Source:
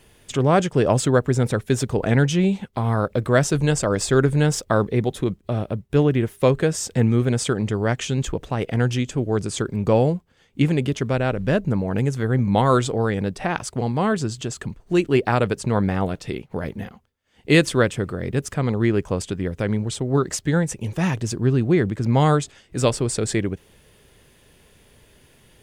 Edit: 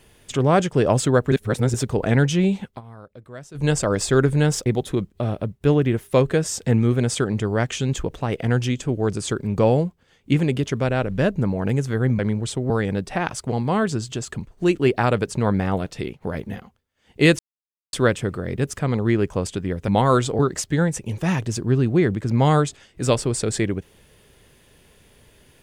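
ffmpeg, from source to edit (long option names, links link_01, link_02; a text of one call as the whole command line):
ffmpeg -i in.wav -filter_complex "[0:a]asplit=11[link_01][link_02][link_03][link_04][link_05][link_06][link_07][link_08][link_09][link_10][link_11];[link_01]atrim=end=1.322[link_12];[link_02]atrim=start=1.318:end=1.742,asetpts=PTS-STARTPTS,areverse[link_13];[link_03]atrim=start=1.738:end=2.81,asetpts=PTS-STARTPTS,afade=type=out:start_time=0.952:duration=0.12:silence=0.0891251[link_14];[link_04]atrim=start=2.81:end=3.54,asetpts=PTS-STARTPTS,volume=-21dB[link_15];[link_05]atrim=start=3.54:end=4.662,asetpts=PTS-STARTPTS,afade=type=in:duration=0.12:silence=0.0891251[link_16];[link_06]atrim=start=4.948:end=12.482[link_17];[link_07]atrim=start=19.628:end=20.142[link_18];[link_08]atrim=start=12.988:end=17.68,asetpts=PTS-STARTPTS,afade=type=out:start_time=4.688:duration=0.004:curve=hsin,apad=pad_dur=0.54[link_19];[link_09]atrim=start=17.68:end=19.632,asetpts=PTS-STARTPTS,afade=type=in:duration=0.004:curve=hsin[link_20];[link_10]atrim=start=12.478:end=12.992[link_21];[link_11]atrim=start=20.138[link_22];[link_12][link_13]acrossfade=duration=0.004:curve1=hsin:curve2=hsin[link_23];[link_14][link_15][link_16]concat=n=3:v=0:a=1[link_24];[link_23][link_24]acrossfade=duration=0.004:curve1=hsin:curve2=hsin[link_25];[link_25][link_17]acrossfade=duration=0.004:curve1=hsin:curve2=hsin[link_26];[link_26][link_18]acrossfade=duration=0.004:curve1=hsin:curve2=hsin[link_27];[link_19][link_20]concat=n=2:v=0:a=1[link_28];[link_27][link_28]acrossfade=duration=0.004:curve1=hsin:curve2=hsin[link_29];[link_29][link_21]acrossfade=duration=0.004:curve1=hsin:curve2=hsin[link_30];[link_30][link_22]acrossfade=duration=0.004:curve1=hsin:curve2=hsin" out.wav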